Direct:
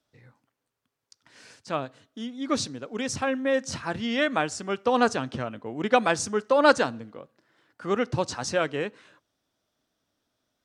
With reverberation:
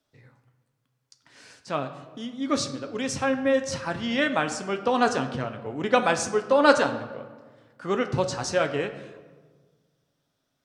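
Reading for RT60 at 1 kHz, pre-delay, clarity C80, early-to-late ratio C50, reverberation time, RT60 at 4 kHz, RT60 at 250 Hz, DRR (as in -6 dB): 1.4 s, 7 ms, 12.5 dB, 11.0 dB, 1.5 s, 0.85 s, 1.8 s, 6.0 dB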